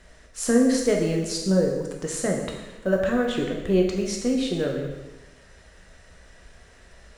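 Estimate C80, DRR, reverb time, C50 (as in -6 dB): 5.5 dB, 0.0 dB, 1.1 s, 3.5 dB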